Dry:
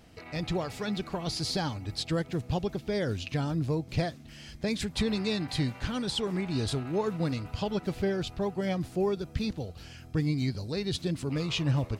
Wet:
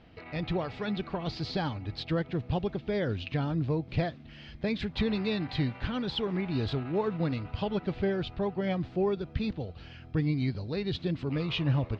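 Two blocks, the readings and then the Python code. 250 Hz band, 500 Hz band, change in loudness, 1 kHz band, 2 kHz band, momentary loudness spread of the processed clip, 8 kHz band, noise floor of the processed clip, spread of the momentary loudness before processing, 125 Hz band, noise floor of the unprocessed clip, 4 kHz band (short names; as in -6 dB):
0.0 dB, 0.0 dB, -0.5 dB, 0.0 dB, 0.0 dB, 5 LU, under -20 dB, -50 dBFS, 5 LU, 0.0 dB, -49 dBFS, -3.0 dB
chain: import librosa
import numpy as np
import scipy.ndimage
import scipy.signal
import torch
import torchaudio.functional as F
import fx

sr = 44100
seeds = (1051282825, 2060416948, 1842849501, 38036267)

y = scipy.signal.sosfilt(scipy.signal.butter(4, 3800.0, 'lowpass', fs=sr, output='sos'), x)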